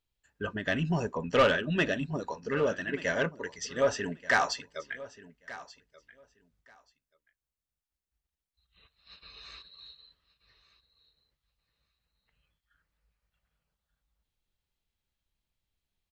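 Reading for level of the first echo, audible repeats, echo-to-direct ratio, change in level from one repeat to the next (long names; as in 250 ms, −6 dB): −18.0 dB, 2, −18.0 dB, −16.0 dB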